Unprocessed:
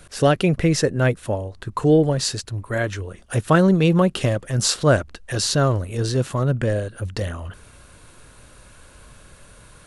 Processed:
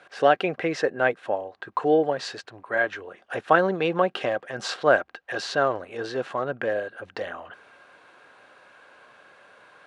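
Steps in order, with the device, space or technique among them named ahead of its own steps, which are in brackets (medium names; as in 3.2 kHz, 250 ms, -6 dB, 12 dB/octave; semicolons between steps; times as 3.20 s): tin-can telephone (band-pass 470–2700 Hz; small resonant body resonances 760/1600 Hz, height 8 dB)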